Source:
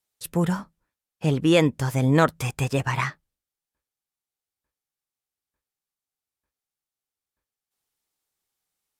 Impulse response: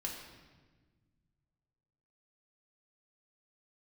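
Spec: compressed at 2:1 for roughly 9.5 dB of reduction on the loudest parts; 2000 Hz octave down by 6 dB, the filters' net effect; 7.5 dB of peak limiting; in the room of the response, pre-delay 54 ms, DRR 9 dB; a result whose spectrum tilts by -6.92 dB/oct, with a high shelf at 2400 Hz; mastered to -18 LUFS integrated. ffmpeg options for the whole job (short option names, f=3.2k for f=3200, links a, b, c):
-filter_complex "[0:a]equalizer=f=2k:t=o:g=-6.5,highshelf=f=2.4k:g=-3,acompressor=threshold=-32dB:ratio=2,alimiter=limit=-23dB:level=0:latency=1,asplit=2[a][b];[1:a]atrim=start_sample=2205,adelay=54[c];[b][c]afir=irnorm=-1:irlink=0,volume=-9.5dB[d];[a][d]amix=inputs=2:normalize=0,volume=16dB"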